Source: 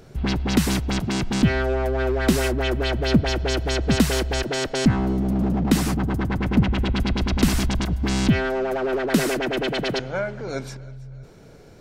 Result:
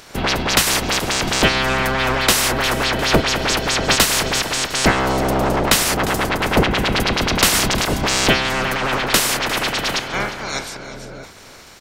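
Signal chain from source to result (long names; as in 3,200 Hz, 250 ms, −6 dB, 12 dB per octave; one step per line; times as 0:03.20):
ceiling on every frequency bin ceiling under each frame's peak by 27 dB
echo with shifted repeats 353 ms, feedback 45%, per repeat −34 Hz, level −15.5 dB
soft clipping −4.5 dBFS, distortion −25 dB
level +4 dB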